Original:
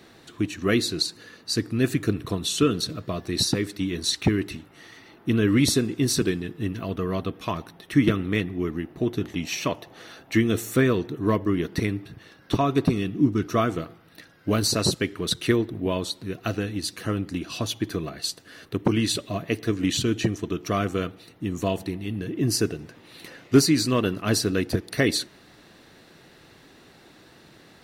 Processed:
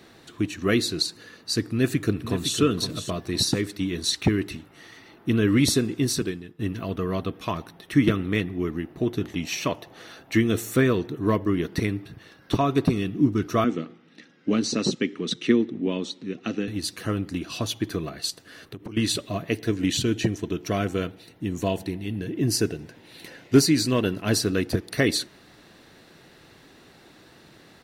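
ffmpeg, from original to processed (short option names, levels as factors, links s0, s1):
-filter_complex "[0:a]asplit=2[s0][s1];[s1]afade=t=in:st=1.68:d=0.01,afade=t=out:st=2.59:d=0.01,aecho=0:1:510|1020|1530:0.334965|0.10049|0.0301469[s2];[s0][s2]amix=inputs=2:normalize=0,asettb=1/sr,asplit=3[s3][s4][s5];[s3]atrim=end=13.644[s6];[s4]atrim=start=13.64:end=16.68,asetpts=PTS-STARTPTS,afade=t=in:d=0.004:c=qsin,afade=t=out:st=3.036:d=0.004:c=qsin,highpass=f=160:w=0.5412,highpass=f=160:w=1.3066,equalizer=f=240:t=q:w=4:g=7,equalizer=f=660:t=q:w=4:g=-9,equalizer=f=1000:t=q:w=4:g=-7,equalizer=f=1500:t=q:w=4:g=-6,equalizer=f=4500:t=q:w=4:g=-7,lowpass=f=6400:w=0.5412,lowpass=f=6400:w=1.3066[s7];[s5]atrim=start=16.676[s8];[s6][s7]acrossfade=d=0.004:c1=hsin:c2=qsin[s9];[s9][s8]acrossfade=d=0.004:c1=qsin:c2=hsin,asettb=1/sr,asplit=3[s10][s11][s12];[s10]atrim=end=18.304[s13];[s11]atrim=start=18.3:end=18.97,asetpts=PTS-STARTPTS,afade=t=in:d=0.004:c=qsin,afade=t=out:st=0.666:d=0.004:c=qsin,acompressor=threshold=0.02:ratio=8:attack=3.2:release=140:knee=1:detection=peak[s14];[s12]atrim=start=18.966[s15];[s13][s14]acrossfade=d=0.004:c1=hsin:c2=qsin[s16];[s16][s15]acrossfade=d=0.004:c1=qsin:c2=hsin,asettb=1/sr,asplit=3[s17][s18][s19];[s17]atrim=end=19.514[s20];[s18]atrim=start=19.51:end=24.33,asetpts=PTS-STARTPTS,afade=t=in:d=0.004:c=qsin,afade=t=out:st=4.816:d=0.004:c=qsin,bandreject=f=1200:w=6.3[s21];[s19]atrim=start=24.326[s22];[s20][s21]acrossfade=d=0.004:c1=hsin:c2=qsin[s23];[s23][s22]acrossfade=d=0.004:c1=qsin:c2=hsin,asplit=2[s24][s25];[s24]atrim=end=6.59,asetpts=PTS-STARTPTS,afade=t=out:st=5.97:d=0.62:silence=0.158489[s26];[s25]atrim=start=6.59,asetpts=PTS-STARTPTS,afade=t=in:d=0.004:c=hsin:silence=0.158489[s27];[s26][s27]concat=n=2:v=0:a=1"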